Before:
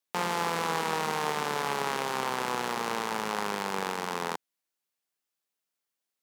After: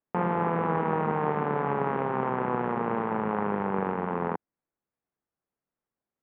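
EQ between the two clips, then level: Gaussian low-pass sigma 5 samples; bass shelf 300 Hz +9 dB; +3.0 dB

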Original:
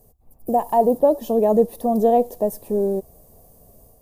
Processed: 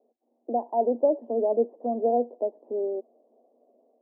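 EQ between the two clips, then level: rippled Chebyshev high-pass 230 Hz, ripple 3 dB; four-pole ladder low-pass 750 Hz, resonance 35%; 0.0 dB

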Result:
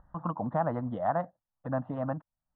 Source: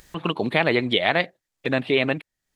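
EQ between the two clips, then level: low-pass 1.3 kHz 24 dB/octave; static phaser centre 960 Hz, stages 4; -2.5 dB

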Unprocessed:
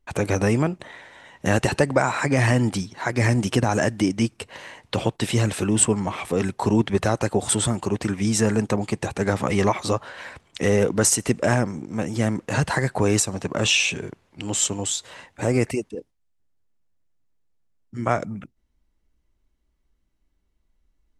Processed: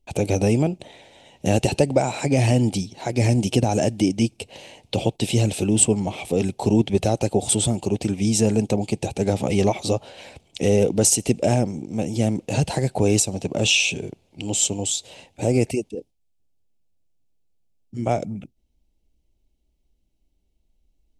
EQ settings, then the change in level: high-order bell 1.4 kHz -15.5 dB 1.2 oct; +1.5 dB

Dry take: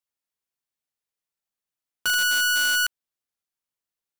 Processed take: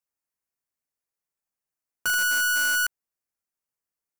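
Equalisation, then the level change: peaking EQ 3.5 kHz -12 dB 0.6 oct; 0.0 dB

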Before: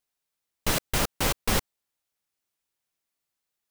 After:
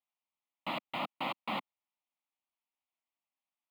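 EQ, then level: high-pass 230 Hz 24 dB/octave; distance through air 320 m; static phaser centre 1.6 kHz, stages 6; -1.5 dB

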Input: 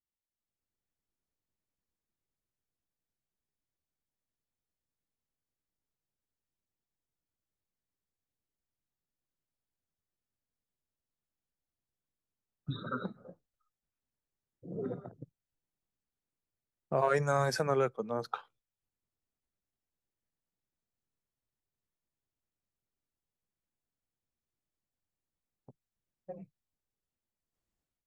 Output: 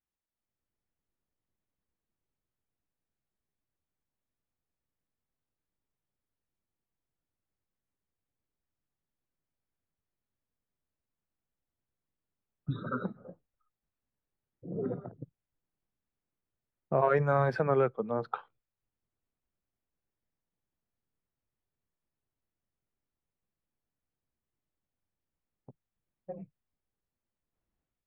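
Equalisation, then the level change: distance through air 440 m; +4.0 dB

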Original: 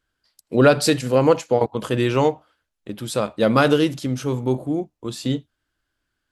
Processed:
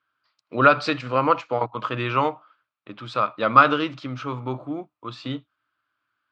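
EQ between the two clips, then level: cabinet simulation 120–4200 Hz, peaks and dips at 120 Hz +10 dB, 290 Hz +6 dB, 620 Hz +5 dB, 1.3 kHz +9 dB, 2.4 kHz +7 dB; peaking EQ 1.1 kHz +14 dB 0.93 oct; treble shelf 2.4 kHz +11.5 dB; -12.5 dB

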